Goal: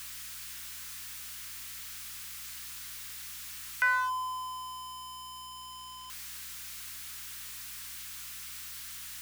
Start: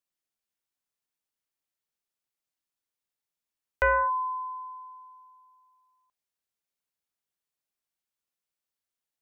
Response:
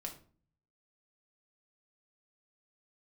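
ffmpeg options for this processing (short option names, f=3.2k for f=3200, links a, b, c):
-af "aeval=exprs='val(0)+0.5*0.0178*sgn(val(0))':c=same,highpass=f=1.2k:w=0.5412,highpass=f=1.2k:w=1.3066,aeval=exprs='val(0)+0.000891*(sin(2*PI*60*n/s)+sin(2*PI*2*60*n/s)/2+sin(2*PI*3*60*n/s)/3+sin(2*PI*4*60*n/s)/4+sin(2*PI*5*60*n/s)/5)':c=same"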